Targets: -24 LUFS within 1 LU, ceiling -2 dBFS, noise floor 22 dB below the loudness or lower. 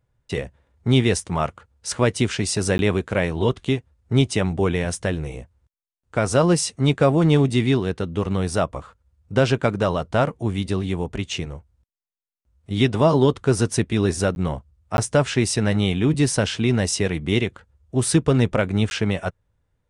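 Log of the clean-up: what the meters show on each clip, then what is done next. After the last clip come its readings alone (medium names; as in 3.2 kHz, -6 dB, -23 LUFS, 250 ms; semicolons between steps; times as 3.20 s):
dropouts 4; longest dropout 11 ms; loudness -21.5 LUFS; peak level -5.0 dBFS; loudness target -24.0 LUFS
-> interpolate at 2.78/14.35/14.97/18.90 s, 11 ms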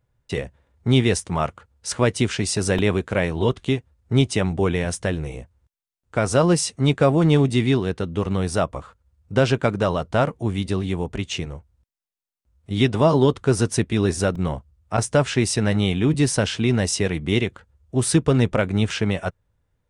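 dropouts 0; loudness -21.5 LUFS; peak level -5.0 dBFS; loudness target -24.0 LUFS
-> trim -2.5 dB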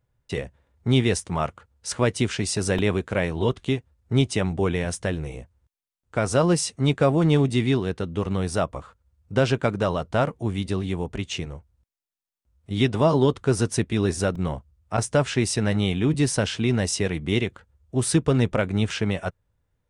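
loudness -24.0 LUFS; peak level -7.5 dBFS; noise floor -77 dBFS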